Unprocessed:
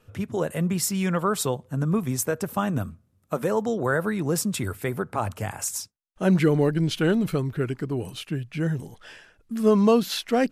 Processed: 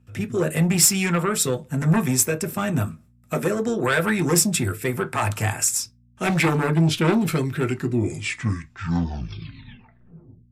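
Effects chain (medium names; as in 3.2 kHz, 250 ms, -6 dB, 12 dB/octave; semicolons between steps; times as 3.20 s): tape stop on the ending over 2.95 s; gate with hold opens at -50 dBFS; rotary cabinet horn 0.9 Hz, later 8 Hz, at 8.50 s; sine folder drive 7 dB, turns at -12 dBFS; mains buzz 60 Hz, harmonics 4, -47 dBFS -8 dB/octave; reverberation RT60 0.15 s, pre-delay 3 ms, DRR 7.5 dB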